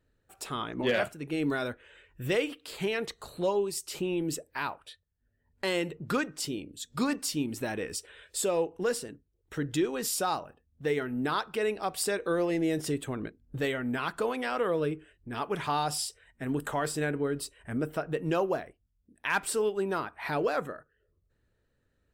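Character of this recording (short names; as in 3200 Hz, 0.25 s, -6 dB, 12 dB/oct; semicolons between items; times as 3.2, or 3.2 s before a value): noise floor -75 dBFS; spectral tilt -4.0 dB/oct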